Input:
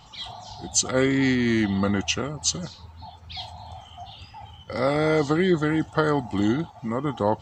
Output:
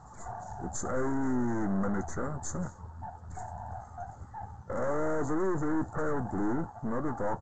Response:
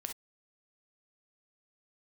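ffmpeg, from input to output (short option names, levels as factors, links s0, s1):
-filter_complex "[0:a]asettb=1/sr,asplit=3[s0][s1][s2];[s0]atrim=end=3.764[s3];[s1]atrim=start=3.76:end=5.99,asetpts=PTS-STARTPTS,afade=t=in:d=0.004:c=qsin,afade=t=out:st=2.226:d=0.004:c=qsin,adynamicequalizer=threshold=0.0158:dfrequency=370:dqfactor=4.9:tfrequency=370:tqfactor=4.9:attack=5:release=100:ratio=0.375:range=2.5:mode=boostabove:tftype=bell[s4];[s2]atrim=start=5.986[s5];[s3][s4]acrossfade=d=0.004:c1=hsin:c2=qsin[s6];[s6][s5]acrossfade=d=0.004:c1=qsin:c2=hsin,aeval=exprs='(tanh(39.8*val(0)+0.6)-tanh(0.6))/39.8':c=same,asuperstop=centerf=3500:order=12:qfactor=0.7,asplit=2[s7][s8];[s8]adelay=16,volume=0.224[s9];[s7][s9]amix=inputs=2:normalize=0,volume=1.41" -ar 16000 -c:a g722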